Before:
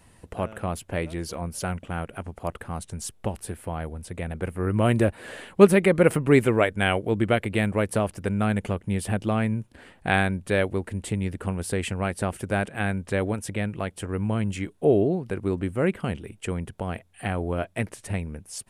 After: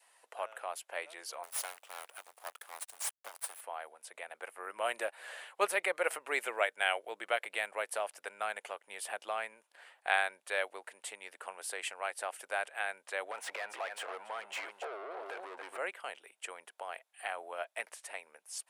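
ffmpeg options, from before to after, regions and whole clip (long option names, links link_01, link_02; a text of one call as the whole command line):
ffmpeg -i in.wav -filter_complex "[0:a]asettb=1/sr,asplit=3[link_01][link_02][link_03];[link_01]atrim=end=1.434[link_04];[link_02]atrim=start=1.43:end=3.61,asetpts=PTS-STARTPTS,afade=type=in:duration=0.004:curve=qsin,afade=type=out:start_time=2.176:duration=0.004:curve=qsin,aemphasis=mode=production:type=50kf,aeval=exprs='max(val(0),0)':channel_layout=same,acrusher=bits=4:mode=log:mix=0:aa=0.000001[link_05];[link_03]atrim=start=3.606[link_06];[link_04][link_05]acrossfade=duration=0.004:curve1=hsin:curve2=qsin[link_07];[link_07][link_06]acrossfade=duration=0.004:curve1=qsin:curve2=hsin,asettb=1/sr,asplit=3[link_08][link_09][link_10];[link_08]atrim=end=13.314[link_11];[link_09]atrim=start=13.31:end=15.78,asetpts=PTS-STARTPTS,afade=type=in:duration=0.004:curve=qsin,afade=type=out:start_time=2.466:duration=0.004:curve=qsin,aecho=1:1:277:0.15,atrim=end_sample=108927,acompressor=threshold=-31dB:ratio=10:attack=3.2:release=140:knee=1:detection=peak,asplit=2[link_12][link_13];[link_13]highpass=frequency=720:poles=1,volume=29dB,asoftclip=type=tanh:threshold=-18dB[link_14];[link_12][link_14]amix=inputs=2:normalize=0,lowpass=frequency=1400:poles=1,volume=-6dB[link_15];[link_10]atrim=start=15.776[link_16];[link_11][link_15]acrossfade=duration=0.004:curve1=hsin:curve2=qsin[link_17];[link_17][link_16]acrossfade=duration=0.004:curve1=qsin:curve2=hsin,highpass=frequency=650:width=0.5412,highpass=frequency=650:width=1.3066,adynamicequalizer=threshold=0.00501:dfrequency=1100:dqfactor=3.5:tfrequency=1100:tqfactor=3.5:attack=5:release=100:ratio=0.375:range=2:mode=cutabove:tftype=bell,volume=-5.5dB" out.wav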